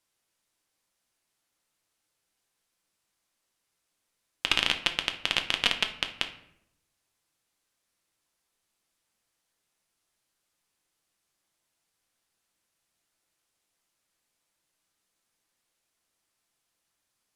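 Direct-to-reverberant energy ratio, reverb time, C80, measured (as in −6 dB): 5.0 dB, 0.75 s, 15.0 dB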